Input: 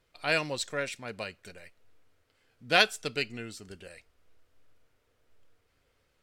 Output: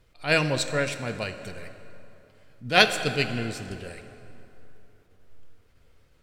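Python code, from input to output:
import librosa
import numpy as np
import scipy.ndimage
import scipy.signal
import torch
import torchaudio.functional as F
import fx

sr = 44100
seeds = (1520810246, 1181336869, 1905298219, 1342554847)

y = fx.low_shelf(x, sr, hz=220.0, db=10.0)
y = fx.rev_plate(y, sr, seeds[0], rt60_s=3.1, hf_ratio=0.65, predelay_ms=0, drr_db=9.5)
y = fx.attack_slew(y, sr, db_per_s=220.0)
y = F.gain(torch.from_numpy(y), 5.0).numpy()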